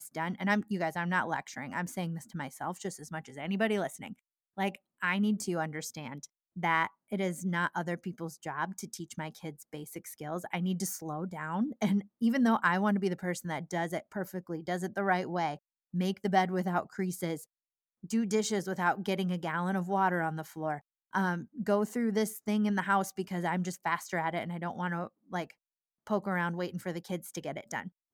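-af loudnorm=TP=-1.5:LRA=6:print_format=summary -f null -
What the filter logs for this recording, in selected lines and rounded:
Input Integrated:    -33.2 LUFS
Input True Peak:     -13.5 dBTP
Input LRA:             5.9 LU
Input Threshold:     -43.5 LUFS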